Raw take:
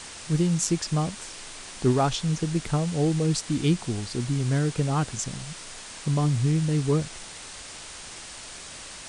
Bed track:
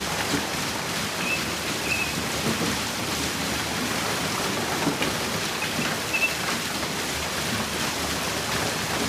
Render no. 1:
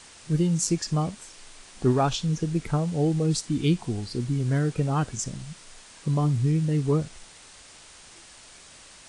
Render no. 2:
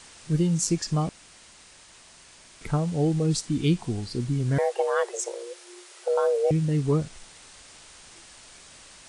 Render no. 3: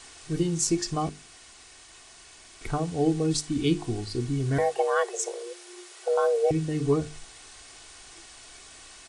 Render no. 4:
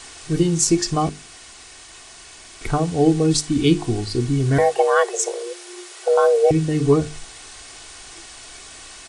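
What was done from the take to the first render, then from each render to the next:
noise reduction from a noise print 8 dB
0:01.09–0:02.61: fill with room tone; 0:04.58–0:06.51: frequency shifter +340 Hz
mains-hum notches 50/100/150/200/250/300/350/400/450 Hz; comb filter 2.7 ms, depth 50%
level +8 dB; brickwall limiter −3 dBFS, peak gain reduction 1.5 dB

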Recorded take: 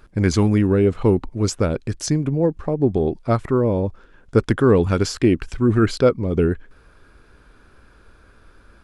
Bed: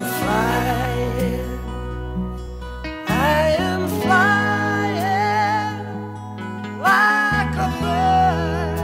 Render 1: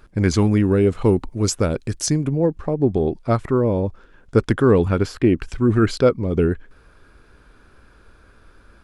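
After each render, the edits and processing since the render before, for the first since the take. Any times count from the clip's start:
0:00.67–0:02.33: high-shelf EQ 7,300 Hz +9.5 dB
0:04.88–0:05.38: parametric band 6,500 Hz −11 dB 1.5 octaves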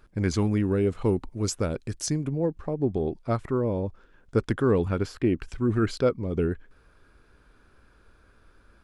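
level −7.5 dB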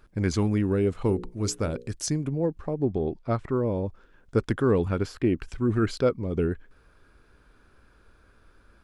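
0:01.07–0:01.90: mains-hum notches 60/120/180/240/300/360/420/480/540 Hz
0:02.85–0:03.51: high-frequency loss of the air 64 metres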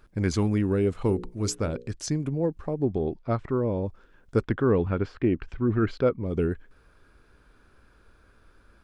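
0:01.55–0:02.20: high-frequency loss of the air 55 metres
0:03.15–0:03.82: high-frequency loss of the air 66 metres
0:04.43–0:06.26: low-pass filter 2,900 Hz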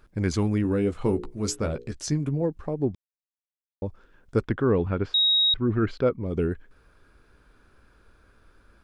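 0:00.63–0:02.42: double-tracking delay 14 ms −7 dB
0:02.95–0:03.82: silence
0:05.14–0:05.54: beep over 3,790 Hz −17.5 dBFS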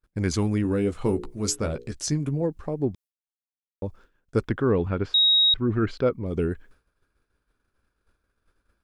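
downward expander −45 dBFS
high-shelf EQ 5,500 Hz +7 dB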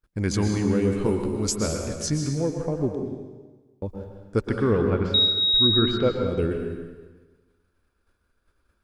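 dense smooth reverb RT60 1.3 s, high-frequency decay 0.95×, pre-delay 105 ms, DRR 3 dB

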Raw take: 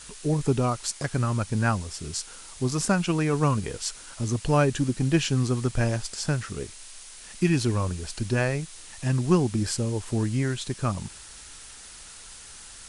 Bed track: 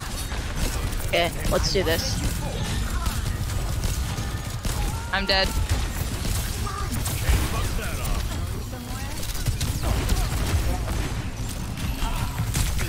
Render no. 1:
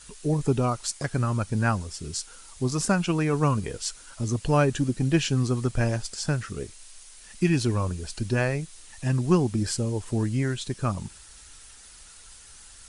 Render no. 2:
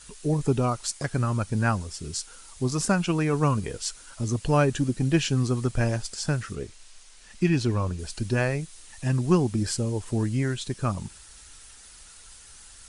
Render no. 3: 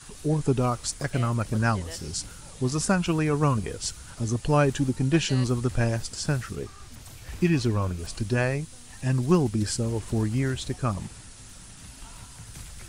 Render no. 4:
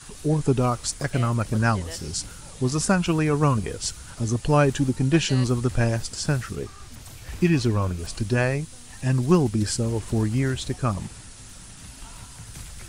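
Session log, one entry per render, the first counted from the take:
broadband denoise 6 dB, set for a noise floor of −45 dBFS
0:06.55–0:07.99: high-frequency loss of the air 52 metres
mix in bed track −19 dB
level +2.5 dB

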